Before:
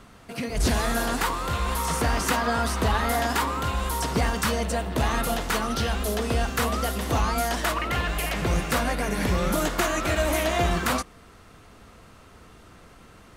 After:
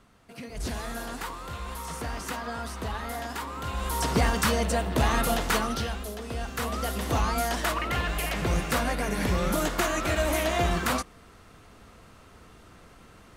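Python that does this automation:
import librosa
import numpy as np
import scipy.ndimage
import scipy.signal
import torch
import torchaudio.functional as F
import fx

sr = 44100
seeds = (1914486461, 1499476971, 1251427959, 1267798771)

y = fx.gain(x, sr, db=fx.line((3.45, -10.0), (4.07, 0.5), (5.56, 0.5), (6.17, -11.0), (6.99, -2.0)))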